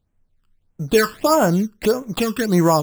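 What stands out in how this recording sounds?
aliases and images of a low sample rate 6 kHz, jitter 0%; phasing stages 12, 1.6 Hz, lowest notch 660–4600 Hz

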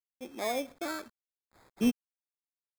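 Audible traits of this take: random-step tremolo 3.7 Hz, depth 65%; a quantiser's noise floor 10-bit, dither none; phasing stages 6, 0.74 Hz, lowest notch 770–2500 Hz; aliases and images of a low sample rate 2.9 kHz, jitter 0%

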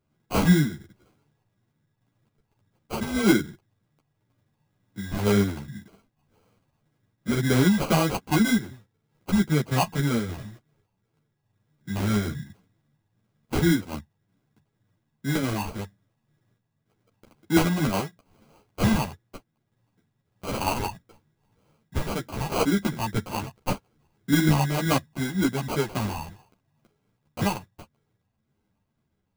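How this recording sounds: phasing stages 12, 1.9 Hz, lowest notch 430–2500 Hz; aliases and images of a low sample rate 1.8 kHz, jitter 0%; random-step tremolo; a shimmering, thickened sound

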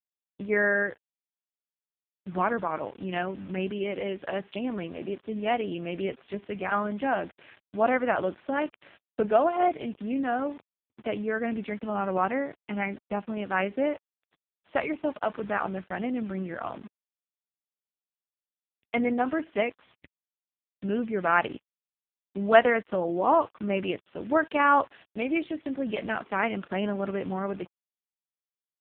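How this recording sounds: a quantiser's noise floor 8-bit, dither none; AMR-NB

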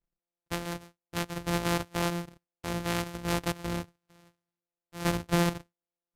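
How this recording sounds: a buzz of ramps at a fixed pitch in blocks of 256 samples; AAC

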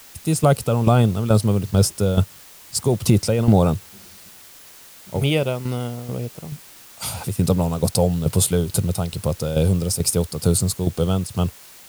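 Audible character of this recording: tremolo saw down 2.3 Hz, depth 70%; a quantiser's noise floor 8-bit, dither triangular

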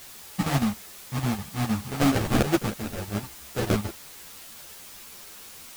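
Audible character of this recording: aliases and images of a low sample rate 1 kHz, jitter 20%; chopped level 6.5 Hz, depth 65%, duty 70%; a quantiser's noise floor 8-bit, dither triangular; a shimmering, thickened sound

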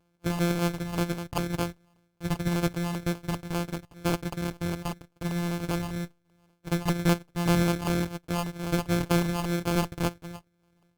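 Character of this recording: a buzz of ramps at a fixed pitch in blocks of 256 samples; phasing stages 4, 2 Hz, lowest notch 530–1900 Hz; aliases and images of a low sample rate 1.9 kHz, jitter 0%; Opus

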